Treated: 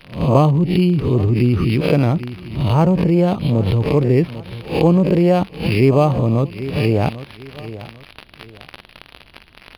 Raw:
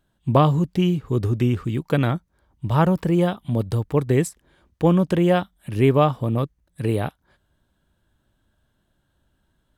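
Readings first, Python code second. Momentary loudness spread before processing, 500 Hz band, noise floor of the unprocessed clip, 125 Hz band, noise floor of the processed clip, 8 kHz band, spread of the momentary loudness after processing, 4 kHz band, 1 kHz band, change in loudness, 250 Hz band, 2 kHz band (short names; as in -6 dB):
9 LU, +5.0 dB, -70 dBFS, +5.5 dB, -47 dBFS, n/a, 15 LU, +6.0 dB, +2.5 dB, +5.0 dB, +5.5 dB, +4.0 dB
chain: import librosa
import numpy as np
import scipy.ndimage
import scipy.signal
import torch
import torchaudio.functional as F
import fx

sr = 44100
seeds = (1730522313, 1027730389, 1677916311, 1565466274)

p1 = fx.spec_swells(x, sr, rise_s=0.33)
p2 = fx.env_lowpass_down(p1, sr, base_hz=1300.0, full_db=-17.0)
p3 = fx.echo_feedback(p2, sr, ms=795, feedback_pct=28, wet_db=-22.5)
p4 = fx.dmg_crackle(p3, sr, seeds[0], per_s=130.0, level_db=-40.0)
p5 = fx.high_shelf_res(p4, sr, hz=2000.0, db=8.0, q=3.0)
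p6 = fx.over_compress(p5, sr, threshold_db=-29.0, ratio=-1.0)
p7 = p5 + F.gain(torch.from_numpy(p6), -0.5).numpy()
p8 = np.interp(np.arange(len(p7)), np.arange(len(p7))[::6], p7[::6])
y = F.gain(torch.from_numpy(p8), 3.0).numpy()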